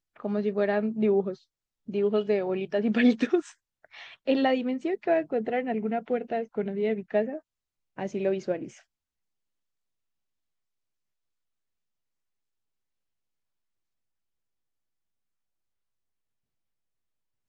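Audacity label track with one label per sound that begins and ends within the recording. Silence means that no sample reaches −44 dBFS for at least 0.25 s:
1.880000	3.520000	sound
3.850000	7.390000	sound
7.980000	8.770000	sound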